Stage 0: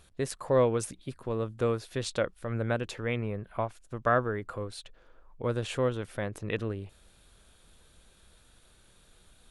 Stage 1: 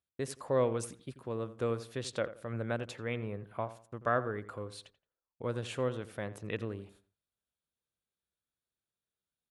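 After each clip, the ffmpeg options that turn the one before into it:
ffmpeg -i in.wav -filter_complex "[0:a]highpass=85,agate=range=-29dB:threshold=-54dB:ratio=16:detection=peak,asplit=2[link_01][link_02];[link_02]adelay=86,lowpass=frequency=2000:poles=1,volume=-14dB,asplit=2[link_03][link_04];[link_04]adelay=86,lowpass=frequency=2000:poles=1,volume=0.31,asplit=2[link_05][link_06];[link_06]adelay=86,lowpass=frequency=2000:poles=1,volume=0.31[link_07];[link_01][link_03][link_05][link_07]amix=inputs=4:normalize=0,volume=-5dB" out.wav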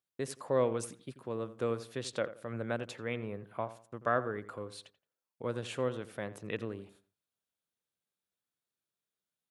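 ffmpeg -i in.wav -af "highpass=120" out.wav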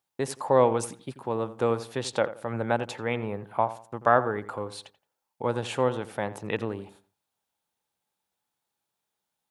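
ffmpeg -i in.wav -af "equalizer=frequency=850:width=3.7:gain=13,volume=7dB" out.wav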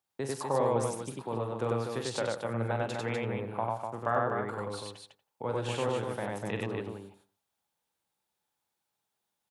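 ffmpeg -i in.wav -filter_complex "[0:a]acrossover=split=140[link_01][link_02];[link_02]acompressor=threshold=-33dB:ratio=1.5[link_03];[link_01][link_03]amix=inputs=2:normalize=0,aecho=1:1:43.73|96.21|247.8:0.398|0.891|0.562,volume=-4dB" out.wav

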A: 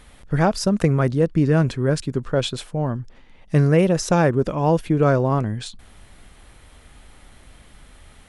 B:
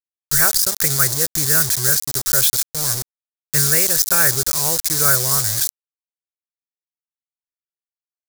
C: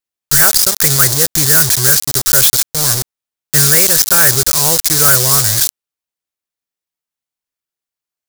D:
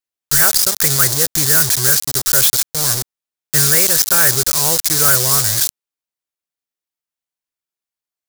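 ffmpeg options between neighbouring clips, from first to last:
ffmpeg -i in.wav -af "firequalizer=gain_entry='entry(120,0);entry(210,-20);entry(380,-6);entry(580,-7);entry(890,-6);entry(1500,12);entry(3700,-2);entry(8600,-25)':delay=0.05:min_phase=1,acrusher=bits=4:mix=0:aa=0.000001,aexciter=amount=7.4:drive=8.6:freq=4200,volume=-3dB" out.wav
ffmpeg -i in.wav -af "aeval=exprs='0.891*sin(PI/2*2.24*val(0)/0.891)':channel_layout=same,volume=-2.5dB" out.wav
ffmpeg -i in.wav -af "lowshelf=frequency=150:gain=-3,volume=-3dB" out.wav

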